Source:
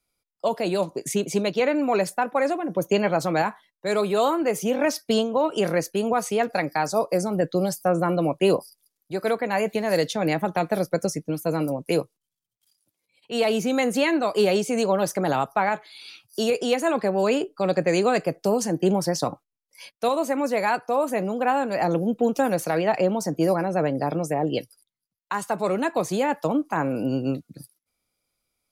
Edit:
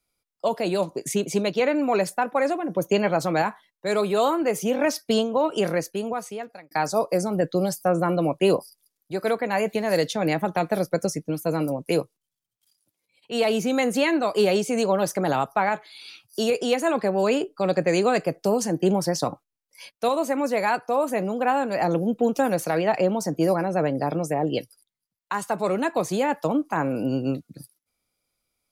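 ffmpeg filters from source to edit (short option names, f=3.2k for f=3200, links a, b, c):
-filter_complex "[0:a]asplit=2[a][b];[a]atrim=end=6.71,asetpts=PTS-STARTPTS,afade=t=out:st=5.59:d=1.12[c];[b]atrim=start=6.71,asetpts=PTS-STARTPTS,afade=t=in:d=0.004:c=hsin[d];[c][d]concat=n=2:v=0:a=1"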